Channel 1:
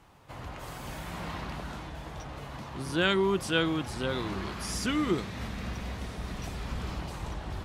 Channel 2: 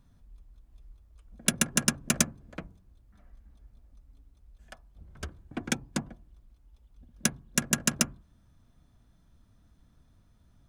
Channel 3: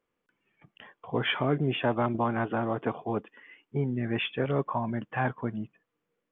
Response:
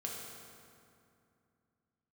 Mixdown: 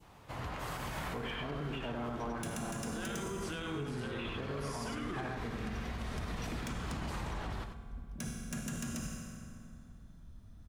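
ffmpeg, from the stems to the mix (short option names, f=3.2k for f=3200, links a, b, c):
-filter_complex "[0:a]adynamicequalizer=threshold=0.00447:dfrequency=1500:dqfactor=0.84:tfrequency=1500:tqfactor=0.84:attack=5:release=100:ratio=0.375:range=2.5:mode=boostabove:tftype=bell,acompressor=threshold=-35dB:ratio=2,volume=-1.5dB,asplit=3[a][b][c];[b]volume=-8.5dB[d];[c]volume=-8.5dB[e];[1:a]lowshelf=f=160:g=8,adelay=950,volume=0.5dB,asplit=2[f][g];[g]volume=-13.5dB[h];[2:a]volume=-9.5dB,asplit=4[i][j][k][l];[j]volume=-5.5dB[m];[k]volume=-4.5dB[n];[l]apad=whole_len=337308[o];[a][o]sidechaincompress=threshold=-47dB:ratio=8:attack=16:release=774[p];[f][i]amix=inputs=2:normalize=0,asoftclip=type=hard:threshold=-30.5dB,alimiter=level_in=14dB:limit=-24dB:level=0:latency=1,volume=-14dB,volume=0dB[q];[3:a]atrim=start_sample=2205[r];[d][h][m]amix=inputs=3:normalize=0[s];[s][r]afir=irnorm=-1:irlink=0[t];[e][n]amix=inputs=2:normalize=0,aecho=0:1:97:1[u];[p][q][t][u]amix=inputs=4:normalize=0,alimiter=level_in=6dB:limit=-24dB:level=0:latency=1:release=62,volume=-6dB"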